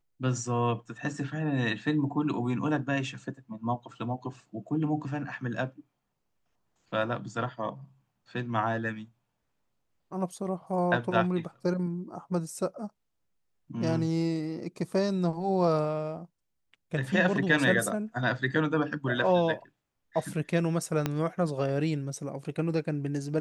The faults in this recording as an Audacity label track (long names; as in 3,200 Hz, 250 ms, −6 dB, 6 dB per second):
21.060000	21.060000	click −13 dBFS